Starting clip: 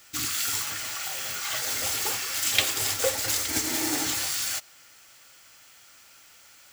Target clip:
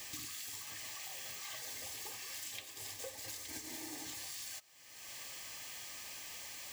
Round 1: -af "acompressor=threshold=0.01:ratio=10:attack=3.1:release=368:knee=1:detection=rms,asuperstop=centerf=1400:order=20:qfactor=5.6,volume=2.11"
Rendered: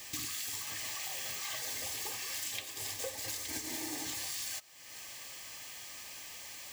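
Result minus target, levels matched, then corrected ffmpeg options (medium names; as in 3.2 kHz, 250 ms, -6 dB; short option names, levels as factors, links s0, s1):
compression: peak gain reduction -6.5 dB
-af "acompressor=threshold=0.00447:ratio=10:attack=3.1:release=368:knee=1:detection=rms,asuperstop=centerf=1400:order=20:qfactor=5.6,volume=2.11"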